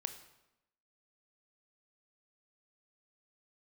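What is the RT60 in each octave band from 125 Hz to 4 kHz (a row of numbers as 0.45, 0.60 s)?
0.90, 1.0, 0.95, 0.90, 0.80, 0.75 s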